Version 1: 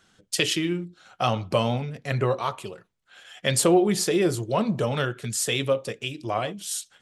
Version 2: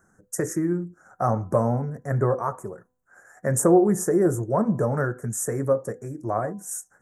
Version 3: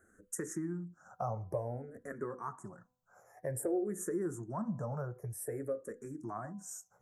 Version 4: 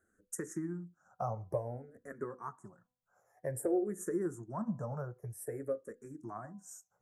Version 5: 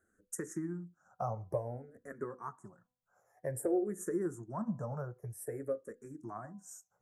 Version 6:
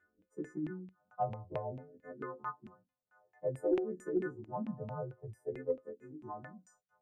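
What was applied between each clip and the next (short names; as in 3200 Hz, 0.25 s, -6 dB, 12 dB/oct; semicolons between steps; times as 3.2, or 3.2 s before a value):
elliptic band-stop 1700–6200 Hz, stop band 60 dB; bell 3900 Hz -10 dB 1.6 oct; de-hum 251.4 Hz, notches 4; gain +2.5 dB
compressor 2:1, threshold -40 dBFS, peak gain reduction 15 dB; endless phaser -0.53 Hz; gain -1.5 dB
upward expander 1.5:1, over -54 dBFS; gain +2.5 dB
nothing audible
frequency quantiser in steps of 3 st; LFO low-pass saw down 4.5 Hz 220–2600 Hz; added harmonics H 2 -23 dB, 4 -36 dB, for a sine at -16.5 dBFS; gain -3 dB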